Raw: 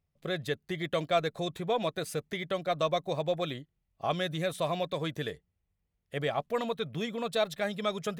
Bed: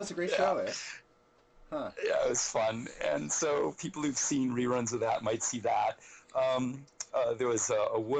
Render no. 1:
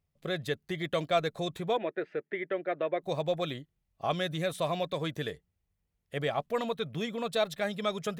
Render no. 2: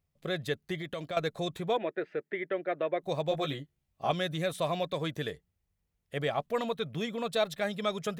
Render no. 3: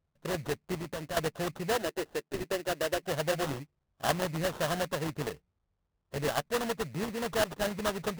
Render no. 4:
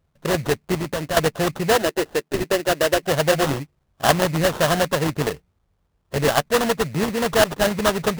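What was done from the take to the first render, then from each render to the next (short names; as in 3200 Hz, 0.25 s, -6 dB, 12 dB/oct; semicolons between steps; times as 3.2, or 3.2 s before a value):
1.77–3.02 speaker cabinet 320–2300 Hz, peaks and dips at 360 Hz +8 dB, 730 Hz -4 dB, 1100 Hz -10 dB, 1800 Hz +6 dB
0.76–1.17 compressor 3:1, threshold -35 dBFS; 3.3–4.11 doubler 14 ms -4 dB
sample-rate reducer 2300 Hz, jitter 20%
gain +12 dB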